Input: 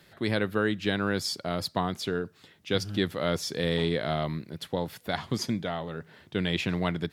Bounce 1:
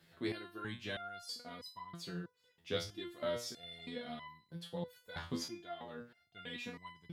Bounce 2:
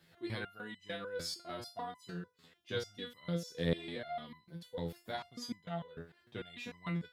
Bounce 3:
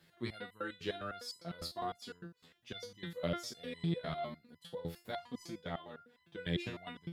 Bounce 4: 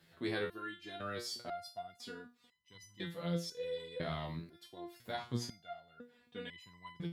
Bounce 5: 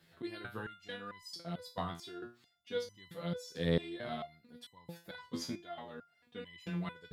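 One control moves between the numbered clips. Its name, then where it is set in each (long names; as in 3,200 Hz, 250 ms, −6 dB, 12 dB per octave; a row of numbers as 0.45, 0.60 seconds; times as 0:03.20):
step-sequenced resonator, speed: 3.1, 6.7, 9.9, 2, 4.5 Hertz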